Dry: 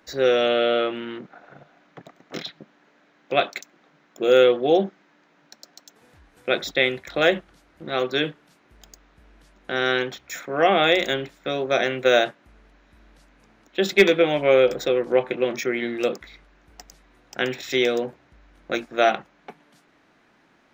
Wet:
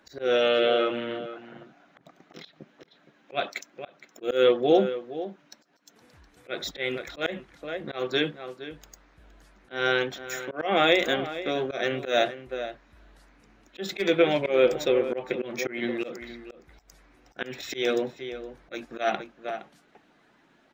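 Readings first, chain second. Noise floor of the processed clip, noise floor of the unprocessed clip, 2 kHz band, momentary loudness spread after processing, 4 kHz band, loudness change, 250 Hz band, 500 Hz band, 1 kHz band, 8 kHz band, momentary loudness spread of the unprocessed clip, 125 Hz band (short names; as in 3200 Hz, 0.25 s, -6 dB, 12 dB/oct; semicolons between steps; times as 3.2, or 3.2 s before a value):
-62 dBFS, -60 dBFS, -5.5 dB, 18 LU, -4.5 dB, -5.0 dB, -3.5 dB, -4.5 dB, -5.0 dB, -4.0 dB, 16 LU, -4.5 dB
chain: bin magnitudes rounded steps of 15 dB; outdoor echo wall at 80 m, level -13 dB; auto swell 0.167 s; gain -1.5 dB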